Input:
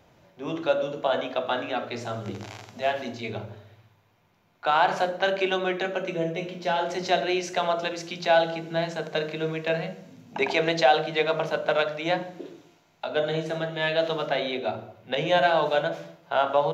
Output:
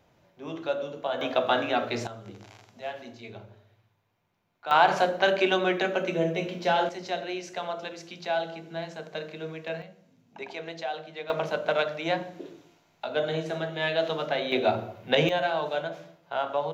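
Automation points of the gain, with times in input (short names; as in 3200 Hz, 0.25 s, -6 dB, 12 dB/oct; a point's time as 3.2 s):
-5.5 dB
from 1.21 s +3 dB
from 2.07 s -10 dB
from 4.71 s +1.5 dB
from 6.89 s -8 dB
from 9.82 s -14 dB
from 11.3 s -2 dB
from 14.52 s +5 dB
from 15.29 s -6 dB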